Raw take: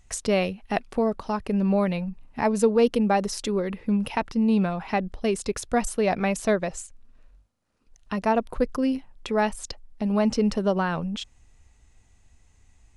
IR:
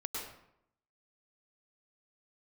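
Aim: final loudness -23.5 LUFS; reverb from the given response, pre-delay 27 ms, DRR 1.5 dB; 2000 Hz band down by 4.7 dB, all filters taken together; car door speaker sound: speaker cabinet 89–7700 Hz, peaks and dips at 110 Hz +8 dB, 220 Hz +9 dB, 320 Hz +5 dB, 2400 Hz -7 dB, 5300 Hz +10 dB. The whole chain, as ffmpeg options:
-filter_complex "[0:a]equalizer=f=2k:t=o:g=-4,asplit=2[a][b];[1:a]atrim=start_sample=2205,adelay=27[c];[b][c]afir=irnorm=-1:irlink=0,volume=-3.5dB[d];[a][d]amix=inputs=2:normalize=0,highpass=89,equalizer=f=110:t=q:w=4:g=8,equalizer=f=220:t=q:w=4:g=9,equalizer=f=320:t=q:w=4:g=5,equalizer=f=2.4k:t=q:w=4:g=-7,equalizer=f=5.3k:t=q:w=4:g=10,lowpass=f=7.7k:w=0.5412,lowpass=f=7.7k:w=1.3066,volume=-5.5dB"

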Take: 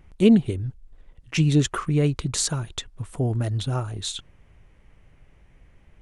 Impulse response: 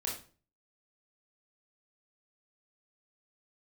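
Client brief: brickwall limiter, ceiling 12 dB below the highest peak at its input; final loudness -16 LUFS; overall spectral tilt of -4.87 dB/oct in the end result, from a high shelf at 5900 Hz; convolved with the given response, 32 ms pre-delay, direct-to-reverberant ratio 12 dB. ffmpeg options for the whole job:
-filter_complex "[0:a]highshelf=f=5.9k:g=7.5,alimiter=limit=-15dB:level=0:latency=1,asplit=2[a][b];[1:a]atrim=start_sample=2205,adelay=32[c];[b][c]afir=irnorm=-1:irlink=0,volume=-14.5dB[d];[a][d]amix=inputs=2:normalize=0,volume=10dB"

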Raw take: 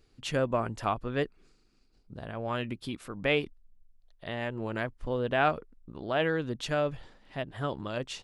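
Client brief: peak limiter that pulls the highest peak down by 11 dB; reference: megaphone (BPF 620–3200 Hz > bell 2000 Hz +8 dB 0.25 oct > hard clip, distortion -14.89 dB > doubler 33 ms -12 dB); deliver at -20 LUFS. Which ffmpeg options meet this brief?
-filter_complex "[0:a]alimiter=limit=-24dB:level=0:latency=1,highpass=620,lowpass=3.2k,equalizer=f=2k:t=o:w=0.25:g=8,asoftclip=type=hard:threshold=-29.5dB,asplit=2[a][b];[b]adelay=33,volume=-12dB[c];[a][c]amix=inputs=2:normalize=0,volume=20dB"

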